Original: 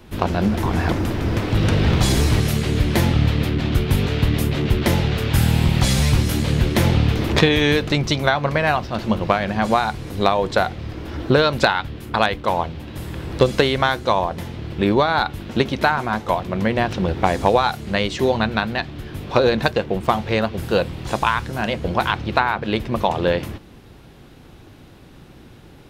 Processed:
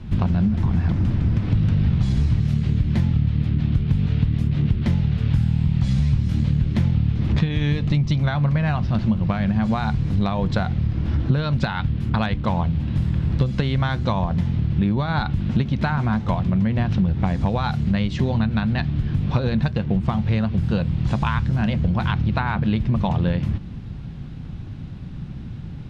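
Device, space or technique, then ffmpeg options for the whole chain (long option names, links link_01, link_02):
jukebox: -filter_complex "[0:a]asettb=1/sr,asplit=3[link_01][link_02][link_03];[link_01]atrim=end=7.704[link_04];[link_02]atrim=start=7.7:end=8.11,asetpts=PTS-STARTPTS,afade=type=in:duration=0.004:curve=qsin,afade=type=out:start_time=0.406:duration=0.004:curve=qsin,bandreject=frequency=1500:width=6[link_05];[link_03]atrim=start=8.106[link_06];[link_04][link_05]acrossfade=duration=0.004:curve1=hsin:curve2=qsin[link_07];[link_07][link_06]acrossfade=duration=0.004:curve1=qsin:curve2=hsin,lowpass=5200,lowshelf=frequency=260:width_type=q:width=1.5:gain=13,acompressor=threshold=-16dB:ratio=6,volume=-1dB"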